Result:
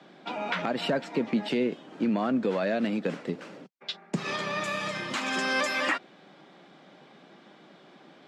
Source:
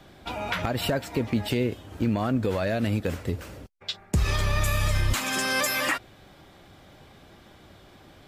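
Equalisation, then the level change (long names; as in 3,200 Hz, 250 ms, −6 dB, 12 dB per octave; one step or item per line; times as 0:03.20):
Butterworth high-pass 160 Hz 48 dB per octave
high-frequency loss of the air 110 metres
0.0 dB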